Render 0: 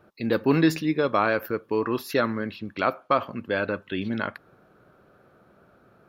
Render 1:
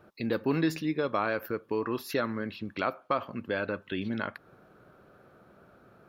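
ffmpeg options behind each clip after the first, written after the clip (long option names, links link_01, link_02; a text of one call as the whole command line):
ffmpeg -i in.wav -af "acompressor=threshold=-36dB:ratio=1.5" out.wav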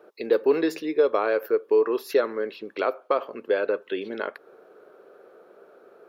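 ffmpeg -i in.wav -af "highpass=frequency=430:width_type=q:width=3.9,volume=1dB" out.wav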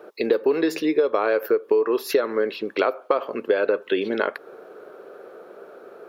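ffmpeg -i in.wav -af "acompressor=threshold=-25dB:ratio=6,volume=8.5dB" out.wav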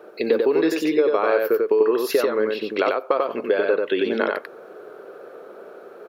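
ffmpeg -i in.wav -af "aecho=1:1:92:0.708" out.wav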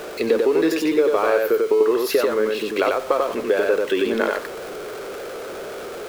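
ffmpeg -i in.wav -af "aeval=exprs='val(0)+0.5*0.0335*sgn(val(0))':channel_layout=same" out.wav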